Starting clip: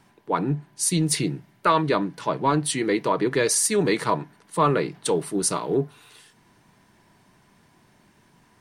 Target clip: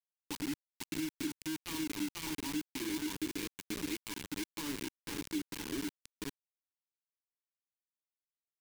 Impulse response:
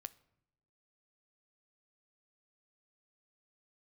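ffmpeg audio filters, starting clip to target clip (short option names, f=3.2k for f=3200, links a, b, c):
-filter_complex "[0:a]asplit=2[a][b];[b]aecho=0:1:51|486:0.141|0.501[c];[a][c]amix=inputs=2:normalize=0,alimiter=limit=-15dB:level=0:latency=1:release=51,asplit=3[d][e][f];[d]bandpass=f=300:t=q:w=8,volume=0dB[g];[e]bandpass=f=870:t=q:w=8,volume=-6dB[h];[f]bandpass=f=2.24k:t=q:w=8,volume=-9dB[i];[g][h][i]amix=inputs=3:normalize=0,lowshelf=f=230:g=-5,aeval=exprs='sgn(val(0))*max(abs(val(0))-0.00119,0)':c=same,highpass=140,acrusher=bits=5:mix=0:aa=0.000001,acompressor=threshold=-34dB:ratio=2,equalizer=f=790:w=0.63:g=-14.5,volume=3.5dB"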